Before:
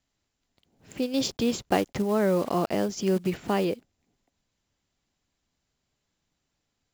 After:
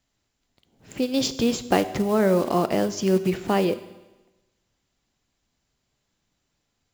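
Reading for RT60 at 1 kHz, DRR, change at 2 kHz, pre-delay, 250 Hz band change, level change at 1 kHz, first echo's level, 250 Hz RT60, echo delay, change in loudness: 1.1 s, 12.0 dB, +4.0 dB, 8 ms, +3.5 dB, +4.0 dB, no echo, 1.1 s, no echo, +3.5 dB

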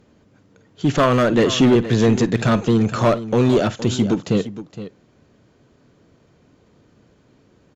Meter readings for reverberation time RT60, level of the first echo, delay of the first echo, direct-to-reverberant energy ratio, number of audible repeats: no reverb, -18.0 dB, 52 ms, no reverb, 2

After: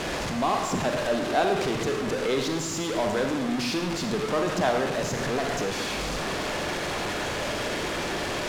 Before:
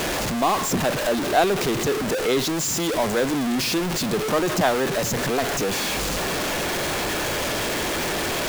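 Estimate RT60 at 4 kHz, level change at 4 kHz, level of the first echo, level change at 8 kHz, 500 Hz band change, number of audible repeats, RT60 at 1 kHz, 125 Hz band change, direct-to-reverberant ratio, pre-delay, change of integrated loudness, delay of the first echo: 0.90 s, -5.0 dB, no echo, -8.5 dB, -3.5 dB, no echo, 1.2 s, -4.0 dB, 4.0 dB, 36 ms, -4.5 dB, no echo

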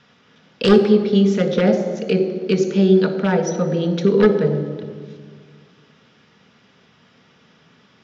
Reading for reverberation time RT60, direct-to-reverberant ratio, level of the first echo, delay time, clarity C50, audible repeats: 1.8 s, 5.0 dB, no echo, no echo, 9.0 dB, no echo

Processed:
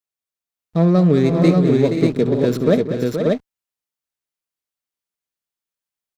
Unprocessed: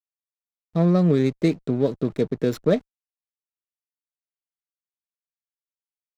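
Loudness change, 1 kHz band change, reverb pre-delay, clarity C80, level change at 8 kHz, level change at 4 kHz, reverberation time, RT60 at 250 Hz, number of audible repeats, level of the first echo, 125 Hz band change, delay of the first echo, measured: +5.5 dB, +6.5 dB, no reverb, no reverb, no reading, +6.5 dB, no reverb, no reverb, 5, -17.0 dB, +6.5 dB, 66 ms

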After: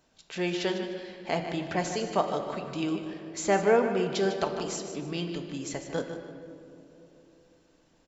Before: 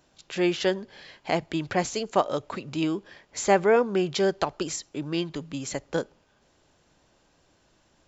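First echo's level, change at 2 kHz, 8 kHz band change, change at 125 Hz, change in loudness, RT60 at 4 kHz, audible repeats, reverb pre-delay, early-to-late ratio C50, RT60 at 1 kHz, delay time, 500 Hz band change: -10.0 dB, -2.5 dB, no reading, -2.0 dB, -3.0 dB, 1.5 s, 2, 4 ms, 6.0 dB, 2.4 s, 151 ms, -2.5 dB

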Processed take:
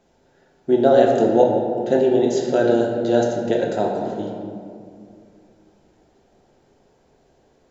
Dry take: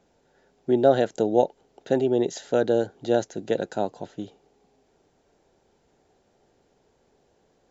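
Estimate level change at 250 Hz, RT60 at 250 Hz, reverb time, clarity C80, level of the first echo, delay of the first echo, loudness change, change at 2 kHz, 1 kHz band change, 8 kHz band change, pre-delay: +6.5 dB, 3.0 s, 2.3 s, 3.5 dB, no echo, no echo, +5.5 dB, +5.5 dB, +6.5 dB, no reading, 3 ms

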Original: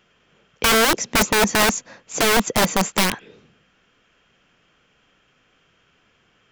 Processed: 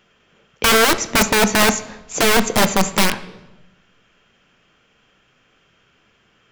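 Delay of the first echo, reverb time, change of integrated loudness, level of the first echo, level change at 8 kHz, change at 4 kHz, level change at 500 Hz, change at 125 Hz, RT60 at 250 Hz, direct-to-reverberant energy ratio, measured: no echo, 1.1 s, +2.5 dB, no echo, +2.0 dB, +2.5 dB, +3.0 dB, +3.0 dB, 1.2 s, 10.0 dB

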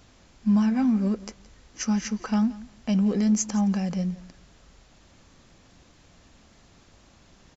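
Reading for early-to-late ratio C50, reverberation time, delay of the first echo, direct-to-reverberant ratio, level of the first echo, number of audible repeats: no reverb, no reverb, 171 ms, no reverb, -19.0 dB, 1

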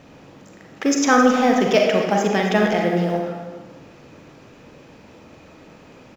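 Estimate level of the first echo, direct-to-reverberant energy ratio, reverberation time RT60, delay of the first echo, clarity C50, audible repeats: -13.5 dB, 0.0 dB, 1.2 s, 267 ms, 2.0 dB, 1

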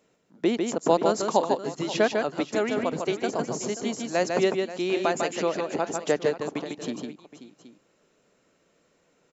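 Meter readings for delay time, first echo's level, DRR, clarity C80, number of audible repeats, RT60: 150 ms, -4.5 dB, no reverb, no reverb, 3, no reverb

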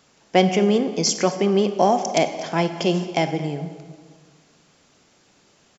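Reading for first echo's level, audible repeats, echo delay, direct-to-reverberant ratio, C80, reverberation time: -20.0 dB, 1, 223 ms, 8.5 dB, 11.0 dB, 1.7 s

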